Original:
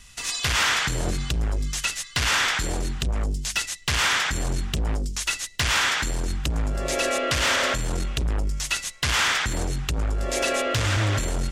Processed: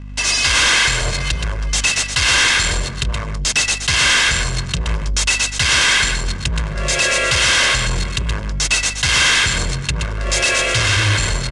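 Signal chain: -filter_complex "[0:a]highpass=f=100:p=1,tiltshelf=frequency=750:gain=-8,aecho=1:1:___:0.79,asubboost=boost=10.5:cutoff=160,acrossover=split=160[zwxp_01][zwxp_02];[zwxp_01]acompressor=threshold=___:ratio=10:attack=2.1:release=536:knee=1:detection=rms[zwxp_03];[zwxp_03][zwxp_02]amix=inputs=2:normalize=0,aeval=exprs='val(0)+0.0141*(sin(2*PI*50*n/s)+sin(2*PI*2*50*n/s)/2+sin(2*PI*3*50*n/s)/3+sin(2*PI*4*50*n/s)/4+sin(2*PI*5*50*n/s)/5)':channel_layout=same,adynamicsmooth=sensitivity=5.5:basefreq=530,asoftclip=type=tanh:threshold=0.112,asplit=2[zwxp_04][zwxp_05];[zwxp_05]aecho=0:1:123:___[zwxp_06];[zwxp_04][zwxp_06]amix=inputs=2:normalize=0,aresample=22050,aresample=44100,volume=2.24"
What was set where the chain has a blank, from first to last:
1.9, 0.0562, 0.473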